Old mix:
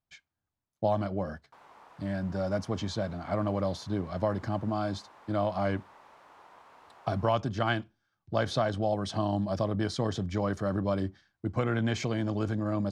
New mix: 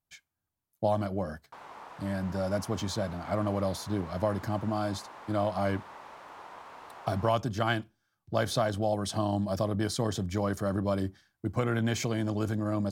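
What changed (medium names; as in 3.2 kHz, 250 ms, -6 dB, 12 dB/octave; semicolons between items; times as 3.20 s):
speech: remove low-pass 5.1 kHz 12 dB/octave; background +8.0 dB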